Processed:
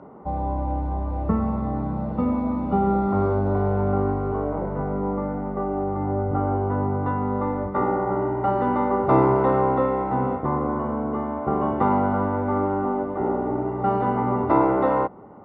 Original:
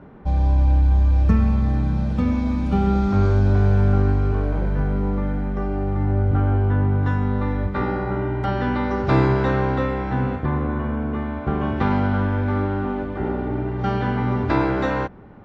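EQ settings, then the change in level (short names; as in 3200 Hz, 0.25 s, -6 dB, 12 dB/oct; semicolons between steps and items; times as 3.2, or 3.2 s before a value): polynomial smoothing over 65 samples; HPF 650 Hz 6 dB/oct; air absorption 120 m; +8.0 dB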